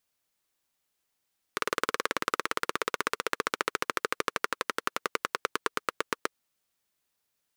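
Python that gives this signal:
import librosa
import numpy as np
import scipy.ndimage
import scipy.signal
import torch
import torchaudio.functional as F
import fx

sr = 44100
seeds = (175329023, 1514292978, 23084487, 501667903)

y = fx.engine_single_rev(sr, seeds[0], length_s=4.78, rpm=2300, resonances_hz=(460.0, 1200.0), end_rpm=900)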